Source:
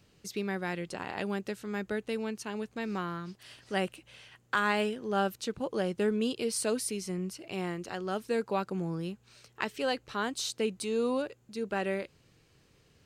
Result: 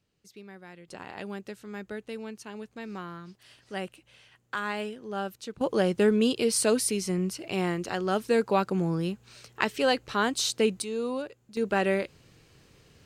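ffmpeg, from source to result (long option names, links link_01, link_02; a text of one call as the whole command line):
ffmpeg -i in.wav -af "asetnsamples=nb_out_samples=441:pad=0,asendcmd='0.88 volume volume -4dB;5.61 volume volume 6.5dB;10.82 volume volume -1.5dB;11.57 volume volume 6.5dB',volume=-13dB" out.wav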